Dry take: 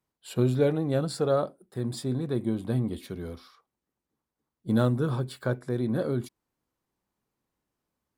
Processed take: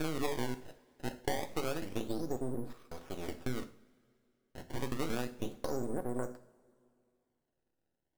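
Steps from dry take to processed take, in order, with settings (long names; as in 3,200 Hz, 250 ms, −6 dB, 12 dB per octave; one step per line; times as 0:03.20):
slices reordered back to front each 182 ms, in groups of 5
half-wave rectification
parametric band 110 Hz −11.5 dB 1.4 octaves
downward compressor 6 to 1, threshold −31 dBFS, peak gain reduction 10.5 dB
treble cut that deepens with the level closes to 1,200 Hz, closed at −34.5 dBFS
sample-and-hold swept by an LFO 22×, swing 160% 0.29 Hz
coupled-rooms reverb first 0.43 s, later 2.6 s, from −22 dB, DRR 7.5 dB
level +1 dB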